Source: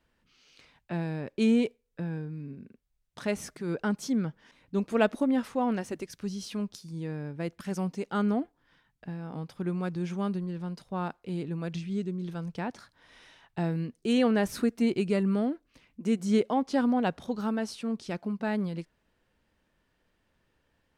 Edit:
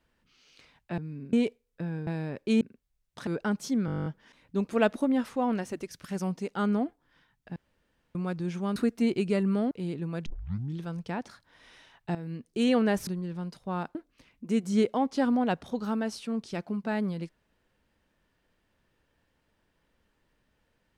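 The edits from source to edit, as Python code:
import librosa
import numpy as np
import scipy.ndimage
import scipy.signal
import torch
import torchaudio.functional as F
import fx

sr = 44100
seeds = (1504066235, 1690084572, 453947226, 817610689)

y = fx.edit(x, sr, fx.swap(start_s=0.98, length_s=0.54, other_s=2.26, other_length_s=0.35),
    fx.cut(start_s=3.27, length_s=0.39),
    fx.stutter(start_s=4.25, slice_s=0.02, count=11),
    fx.cut(start_s=6.23, length_s=1.37),
    fx.room_tone_fill(start_s=9.12, length_s=0.59),
    fx.swap(start_s=10.32, length_s=0.88, other_s=14.56, other_length_s=0.95),
    fx.tape_start(start_s=11.75, length_s=0.53),
    fx.fade_in_from(start_s=13.64, length_s=0.38, floor_db=-13.5), tone=tone)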